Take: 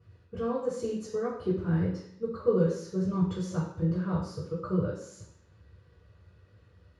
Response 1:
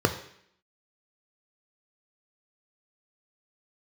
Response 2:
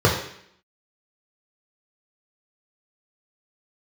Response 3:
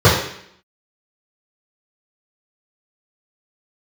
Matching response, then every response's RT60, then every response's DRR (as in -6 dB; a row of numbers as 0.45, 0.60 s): 3; 0.65, 0.65, 0.65 s; 5.5, -4.0, -13.0 dB